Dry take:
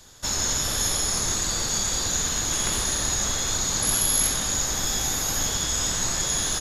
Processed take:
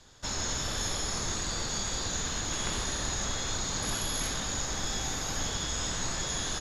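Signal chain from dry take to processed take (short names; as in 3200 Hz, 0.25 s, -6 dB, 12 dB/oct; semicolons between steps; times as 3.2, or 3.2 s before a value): air absorption 76 m; gain -4 dB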